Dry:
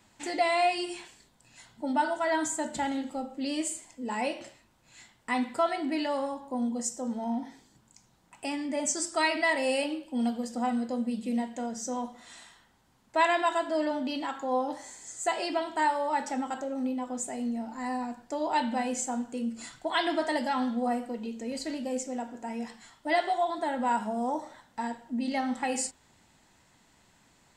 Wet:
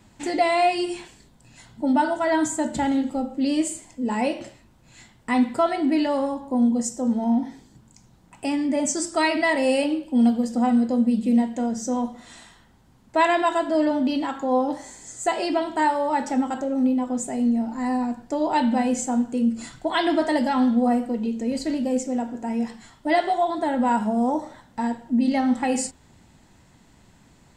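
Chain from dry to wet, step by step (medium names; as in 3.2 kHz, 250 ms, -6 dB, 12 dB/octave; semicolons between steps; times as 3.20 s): bass shelf 400 Hz +11 dB; trim +3 dB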